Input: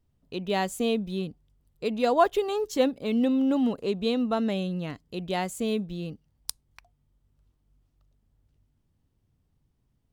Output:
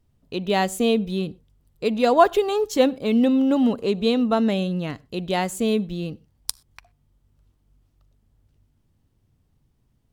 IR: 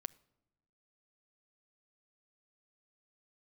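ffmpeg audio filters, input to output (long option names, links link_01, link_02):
-filter_complex "[0:a]asplit=2[link_01][link_02];[1:a]atrim=start_sample=2205,atrim=end_sample=4410,asetrate=33516,aresample=44100[link_03];[link_02][link_03]afir=irnorm=-1:irlink=0,volume=13dB[link_04];[link_01][link_04]amix=inputs=2:normalize=0,volume=-7.5dB"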